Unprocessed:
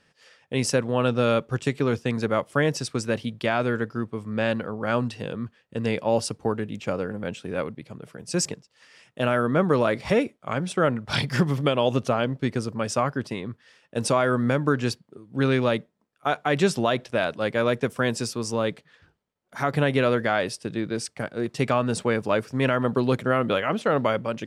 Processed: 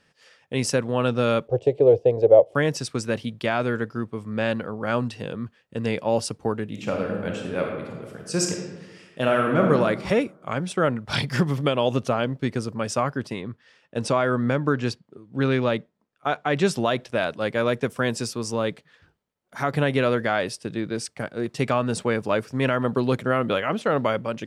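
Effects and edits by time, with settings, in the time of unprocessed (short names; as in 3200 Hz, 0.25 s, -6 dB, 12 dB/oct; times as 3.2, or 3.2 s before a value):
1.48–2.55 EQ curve 120 Hz 0 dB, 220 Hz -13 dB, 310 Hz 0 dB, 510 Hz +15 dB, 740 Hz +9 dB, 1300 Hz -21 dB, 3000 Hz -10 dB, 11000 Hz -23 dB
6.67–9.7 reverb throw, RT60 1.3 s, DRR 1 dB
13.42–16.65 air absorption 53 m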